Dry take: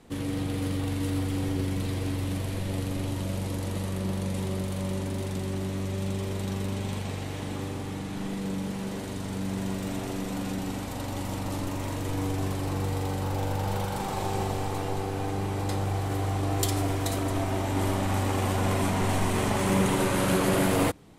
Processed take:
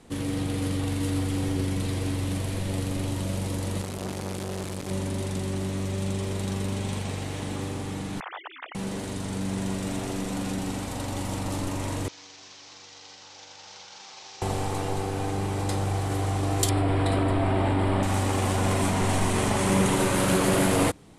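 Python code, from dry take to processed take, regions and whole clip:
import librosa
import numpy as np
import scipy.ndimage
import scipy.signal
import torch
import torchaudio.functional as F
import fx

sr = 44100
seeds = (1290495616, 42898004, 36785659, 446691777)

y = fx.chain(x, sr, fx.high_shelf(hz=7900.0, db=-4.5),
    fx.quant_dither(seeds[0], bits=6, dither='none'),
    fx.transformer_sat(knee_hz=510.0), at=(3.81, 4.91))
y = fx.chain(y, sr, fx.sine_speech(),
    fx.highpass(hz=770.0, slope=24), at=(8.2, 8.75))
y = fx.chain(y, sr, fx.cvsd(bps=32000),
    fx.differentiator(), at=(12.08, 14.42))
y = fx.chain(y, sr, fx.moving_average(points=7),
    fx.env_flatten(amount_pct=100), at=(16.69, 18.03))
y = scipy.signal.sosfilt(scipy.signal.butter(4, 11000.0, 'lowpass', fs=sr, output='sos'), y)
y = fx.high_shelf(y, sr, hz=7500.0, db=6.5)
y = y * librosa.db_to_amplitude(1.5)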